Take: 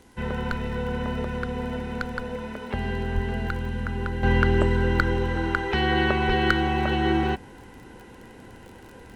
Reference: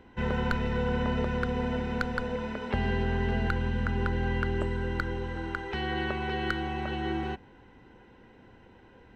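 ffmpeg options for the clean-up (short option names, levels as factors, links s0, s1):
-filter_complex "[0:a]adeclick=t=4,asplit=3[s0][s1][s2];[s0]afade=t=out:st=3.14:d=0.02[s3];[s1]highpass=f=140:w=0.5412,highpass=f=140:w=1.3066,afade=t=in:st=3.14:d=0.02,afade=t=out:st=3.26:d=0.02[s4];[s2]afade=t=in:st=3.26:d=0.02[s5];[s3][s4][s5]amix=inputs=3:normalize=0,asplit=3[s6][s7][s8];[s6]afade=t=out:st=6.27:d=0.02[s9];[s7]highpass=f=140:w=0.5412,highpass=f=140:w=1.3066,afade=t=in:st=6.27:d=0.02,afade=t=out:st=6.39:d=0.02[s10];[s8]afade=t=in:st=6.39:d=0.02[s11];[s9][s10][s11]amix=inputs=3:normalize=0,agate=range=0.0891:threshold=0.0126,asetnsamples=n=441:p=0,asendcmd='4.23 volume volume -9dB',volume=1"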